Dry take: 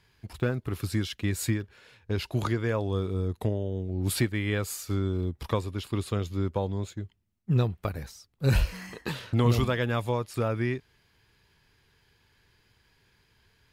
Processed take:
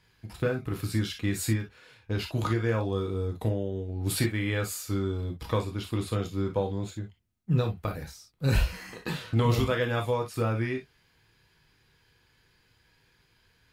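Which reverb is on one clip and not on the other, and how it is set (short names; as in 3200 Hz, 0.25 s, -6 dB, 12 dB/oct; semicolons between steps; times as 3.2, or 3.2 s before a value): non-linear reverb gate 80 ms flat, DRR 2.5 dB; gain -1.5 dB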